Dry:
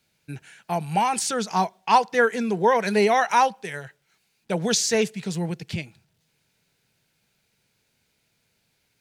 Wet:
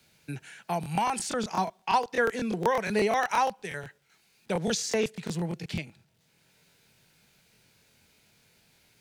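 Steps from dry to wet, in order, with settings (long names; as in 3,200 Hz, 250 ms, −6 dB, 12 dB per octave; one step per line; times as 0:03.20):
regular buffer underruns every 0.12 s, samples 1,024, repeat, from 0:00.81
multiband upward and downward compressor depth 40%
level −5.5 dB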